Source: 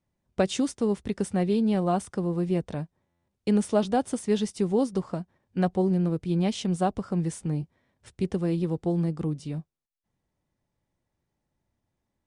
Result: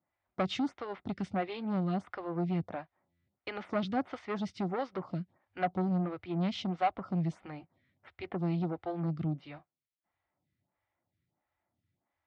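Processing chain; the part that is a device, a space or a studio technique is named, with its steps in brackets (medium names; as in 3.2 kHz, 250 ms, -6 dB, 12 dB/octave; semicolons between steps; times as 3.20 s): vibe pedal into a guitar amplifier (lamp-driven phase shifter 1.5 Hz; valve stage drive 24 dB, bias 0.2; cabinet simulation 92–4300 Hz, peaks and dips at 94 Hz +6 dB, 220 Hz -4 dB, 440 Hz -9 dB, 730 Hz +5 dB, 1.3 kHz +6 dB, 2.1 kHz +7 dB)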